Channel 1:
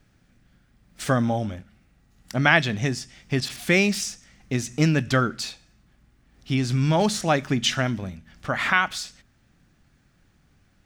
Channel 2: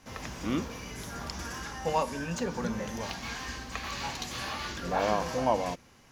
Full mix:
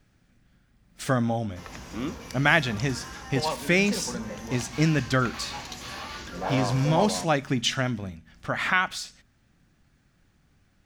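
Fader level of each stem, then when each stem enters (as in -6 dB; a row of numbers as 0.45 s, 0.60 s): -2.5 dB, -1.5 dB; 0.00 s, 1.50 s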